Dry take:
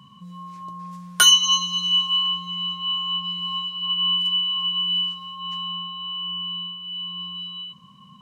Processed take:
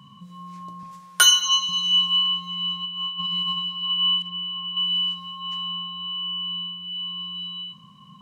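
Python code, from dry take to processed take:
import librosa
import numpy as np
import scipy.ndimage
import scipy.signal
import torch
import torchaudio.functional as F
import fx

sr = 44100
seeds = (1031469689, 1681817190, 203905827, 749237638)

y = fx.highpass(x, sr, hz=370.0, slope=12, at=(0.83, 1.69))
y = fx.over_compress(y, sr, threshold_db=-29.0, ratio=-0.5, at=(2.84, 3.56), fade=0.02)
y = fx.spacing_loss(y, sr, db_at_10k=25, at=(4.22, 4.77))
y = fx.room_shoebox(y, sr, seeds[0], volume_m3=230.0, walls='mixed', distance_m=0.34)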